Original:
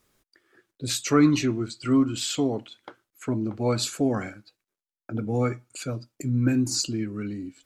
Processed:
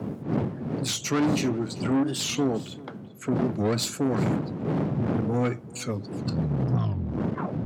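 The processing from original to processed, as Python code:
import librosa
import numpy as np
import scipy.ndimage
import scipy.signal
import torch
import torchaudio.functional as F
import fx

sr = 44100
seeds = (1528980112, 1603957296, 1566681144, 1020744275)

p1 = fx.tape_stop_end(x, sr, length_s=1.93)
p2 = fx.dmg_wind(p1, sr, seeds[0], corner_hz=240.0, level_db=-27.0)
p3 = fx.tube_stage(p2, sr, drive_db=23.0, bias=0.4)
p4 = scipy.signal.sosfilt(scipy.signal.butter(4, 120.0, 'highpass', fs=sr, output='sos'), p3)
p5 = fx.low_shelf(p4, sr, hz=200.0, db=4.5)
p6 = p5 + 10.0 ** (-20.5 / 20.0) * np.pad(p5, (int(388 * sr / 1000.0), 0))[:len(p5)]
p7 = fx.rider(p6, sr, range_db=10, speed_s=2.0)
p8 = p6 + (p7 * librosa.db_to_amplitude(0.5))
p9 = fx.record_warp(p8, sr, rpm=45.0, depth_cents=250.0)
y = p9 * librosa.db_to_amplitude(-4.5)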